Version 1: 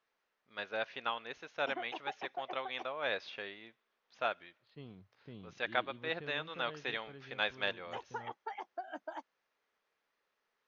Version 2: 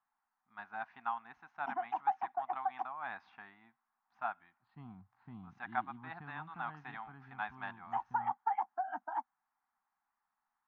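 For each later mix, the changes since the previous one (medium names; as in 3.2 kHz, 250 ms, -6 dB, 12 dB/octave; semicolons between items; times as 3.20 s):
first voice -7.0 dB; master: add FFT filter 130 Hz 0 dB, 240 Hz +3 dB, 530 Hz -25 dB, 770 Hz +12 dB, 1.6 kHz +2 dB, 3.2 kHz -15 dB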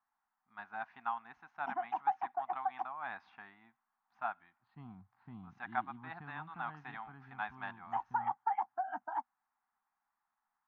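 background: remove high-pass 180 Hz 24 dB/octave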